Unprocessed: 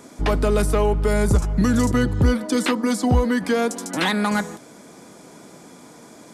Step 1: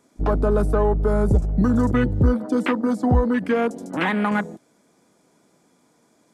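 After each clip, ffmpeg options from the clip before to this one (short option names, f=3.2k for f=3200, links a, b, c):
-af "afwtdn=0.0447"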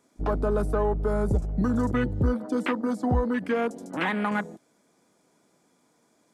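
-af "lowshelf=f=360:g=-3,volume=-4dB"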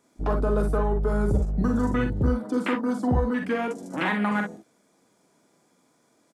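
-af "aecho=1:1:44|59:0.501|0.355"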